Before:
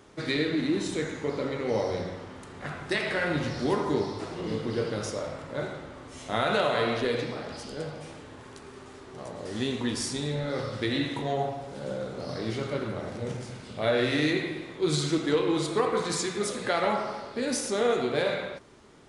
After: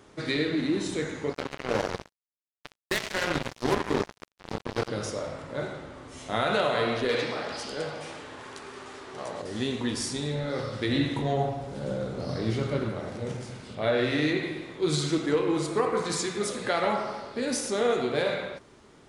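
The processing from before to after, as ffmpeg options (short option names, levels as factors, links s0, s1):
-filter_complex "[0:a]asettb=1/sr,asplit=3[s0][s1][s2];[s0]atrim=end=1.334[s3];[s1]atrim=start=1.33:end=4.89,asetpts=PTS-STARTPTS,afade=t=in:d=0.004:c=qsin,afade=t=out:st=3.556:d=0.004:c=qsin,acrusher=bits=3:mix=0:aa=0.5[s4];[s2]atrim=start=4.886[s5];[s3][s4]acrossfade=d=0.004:c1=hsin:c2=qsin[s6];[s6][s5]acrossfade=d=0.004:c1=qsin:c2=hsin,asettb=1/sr,asplit=3[s7][s8][s9];[s7]atrim=end=7.094[s10];[s8]atrim=start=7.09:end=9.42,asetpts=PTS-STARTPTS,afade=t=in:d=0.004:c=qsin,afade=t=out:st=2.326:d=0.004:c=qsin,asplit=2[s11][s12];[s12]highpass=f=720:p=1,volume=3.98,asoftclip=type=tanh:threshold=0.178[s13];[s11][s13]amix=inputs=2:normalize=0,lowpass=f=6200:p=1,volume=0.501[s14];[s9]atrim=start=9.416[s15];[s10][s14]acrossfade=d=0.004:c1=hsin:c2=qsin[s16];[s16][s15]acrossfade=d=0.004:c1=qsin:c2=hsin,asettb=1/sr,asplit=3[s17][s18][s19];[s17]atrim=end=10.894[s20];[s18]atrim=start=10.89:end=12.89,asetpts=PTS-STARTPTS,afade=t=in:d=0.004:c=qsin,afade=t=out:st=1.996:d=0.004:c=qsin,lowshelf=f=220:g=8[s21];[s19]atrim=start=12.886[s22];[s20][s21]acrossfade=d=0.004:c1=hsin:c2=qsin[s23];[s23][s22]acrossfade=d=0.004:c1=qsin:c2=hsin,asettb=1/sr,asplit=3[s24][s25][s26];[s24]atrim=end=13.754[s27];[s25]atrim=start=13.75:end=14.43,asetpts=PTS-STARTPTS,afade=t=in:d=0.004:c=qsin,afade=t=out:st=0.676:d=0.004:c=qsin,highshelf=f=6000:g=-7.5[s28];[s26]atrim=start=14.426[s29];[s27][s28]acrossfade=d=0.004:c1=hsin:c2=qsin[s30];[s30][s29]acrossfade=d=0.004:c1=qsin:c2=hsin,asettb=1/sr,asplit=3[s31][s32][s33];[s31]atrim=end=15.264[s34];[s32]atrim=start=15.26:end=16.06,asetpts=PTS-STARTPTS,afade=t=in:d=0.004:c=qsin,afade=t=out:st=0.796:d=0.004:c=qsin,equalizer=f=3600:t=o:w=0.49:g=-7.5[s35];[s33]atrim=start=16.056[s36];[s34][s35]acrossfade=d=0.004:c1=hsin:c2=qsin[s37];[s37][s36]acrossfade=d=0.004:c1=qsin:c2=hsin"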